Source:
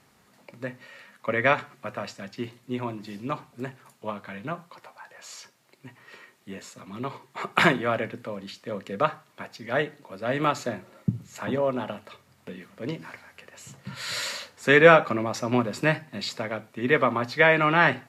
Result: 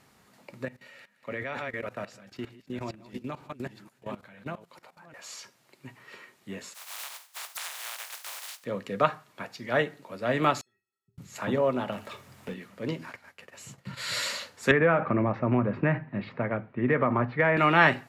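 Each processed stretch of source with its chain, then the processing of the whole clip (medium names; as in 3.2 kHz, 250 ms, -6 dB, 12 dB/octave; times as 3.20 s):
0.65–5.14 s: chunks repeated in reverse 461 ms, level -6.5 dB + level held to a coarse grid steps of 17 dB + peaking EQ 1.1 kHz -5.5 dB 0.31 oct
6.73–8.63 s: spectral contrast reduction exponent 0.19 + high-pass 700 Hz 24 dB/octave + compression, threshold -35 dBFS
10.61–11.18 s: amplifier tone stack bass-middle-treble 6-0-2 + inharmonic resonator 390 Hz, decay 0.33 s, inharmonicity 0.03
11.92–12.54 s: companding laws mixed up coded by mu + peaking EQ 4.4 kHz -3 dB 0.3 oct
13.06–14.12 s: expander -54 dBFS + transient shaper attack -2 dB, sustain -9 dB
14.71–17.57 s: low-pass 2.2 kHz 24 dB/octave + bass shelf 180 Hz +9.5 dB + compression 4:1, threshold -19 dBFS
whole clip: none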